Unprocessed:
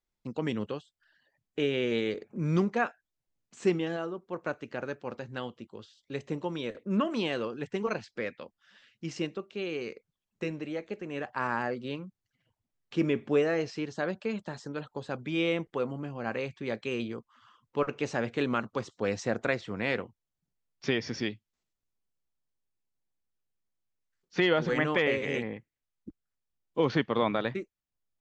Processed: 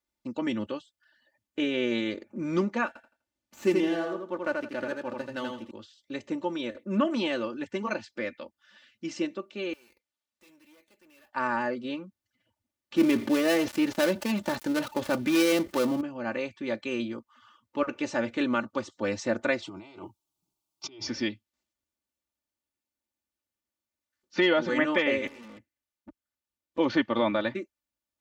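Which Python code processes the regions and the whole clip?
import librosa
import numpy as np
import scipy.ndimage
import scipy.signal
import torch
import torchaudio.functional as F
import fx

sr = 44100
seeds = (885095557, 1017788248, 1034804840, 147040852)

y = fx.chain(x, sr, fx.echo_feedback(ms=83, feedback_pct=25, wet_db=-3.5),
    fx.running_max(window=3), at=(2.87, 5.71))
y = fx.chain(y, sr, fx.pre_emphasis(coefficient=0.9),
    fx.tube_stage(drive_db=58.0, bias=0.6),
    fx.resample_bad(factor=3, down='none', up='hold'), at=(9.73, 11.33))
y = fx.chain(y, sr, fx.dead_time(dead_ms=0.17),
    fx.env_flatten(amount_pct=50), at=(12.96, 16.01))
y = fx.chain(y, sr, fx.over_compress(threshold_db=-41.0, ratio=-1.0),
    fx.fixed_phaser(hz=350.0, stages=8), at=(19.62, 21.07))
y = fx.chain(y, sr, fx.over_compress(threshold_db=-35.0, ratio=-0.5),
    fx.tube_stage(drive_db=46.0, bias=0.75), at=(25.27, 26.78))
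y = scipy.signal.sosfilt(scipy.signal.butter(2, 67.0, 'highpass', fs=sr, output='sos'), y)
y = y + 0.8 * np.pad(y, (int(3.4 * sr / 1000.0), 0))[:len(y)]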